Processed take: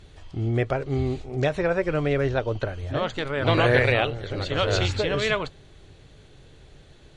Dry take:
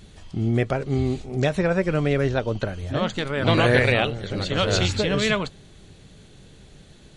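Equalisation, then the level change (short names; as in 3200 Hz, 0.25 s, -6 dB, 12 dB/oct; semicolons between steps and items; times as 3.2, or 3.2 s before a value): LPF 3400 Hz 6 dB/oct; bell 200 Hz -11.5 dB 0.56 oct; 0.0 dB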